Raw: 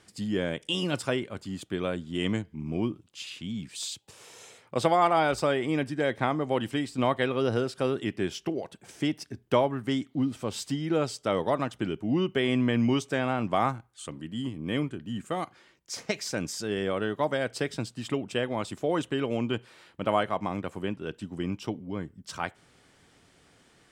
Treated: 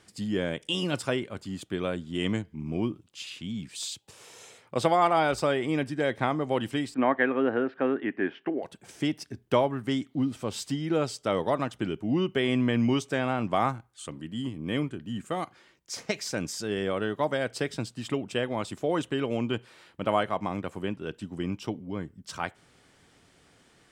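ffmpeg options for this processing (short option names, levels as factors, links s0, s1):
-filter_complex "[0:a]asettb=1/sr,asplit=3[s0][s1][s2];[s0]atrim=end=6.944[s3];[s1]atrim=start=6.94:end=8.63,asetpts=PTS-STARTPTS,afade=t=in:d=0.004:c=qsin,afade=t=out:st=1.686:d=0.004:c=qsin,highpass=260,equalizer=f=270:t=q:w=4:g=8,equalizer=f=790:t=q:w=4:g=3,equalizer=f=1700:t=q:w=4:g=9,lowpass=f=2400:w=0.5412,lowpass=f=2400:w=1.3066[s4];[s2]atrim=start=8.626[s5];[s3][s4]acrossfade=d=0.004:c1=hsin:c2=qsin[s6];[s6][s5]acrossfade=d=0.004:c1=qsin:c2=hsin"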